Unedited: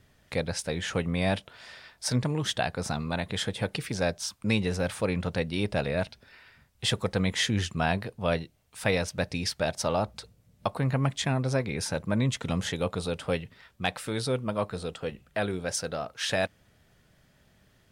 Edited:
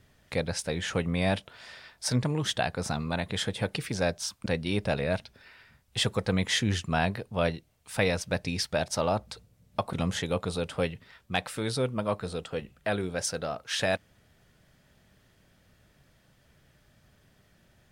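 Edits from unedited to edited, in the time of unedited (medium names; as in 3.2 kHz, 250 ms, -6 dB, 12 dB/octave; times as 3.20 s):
4.46–5.33 s: delete
10.80–12.43 s: delete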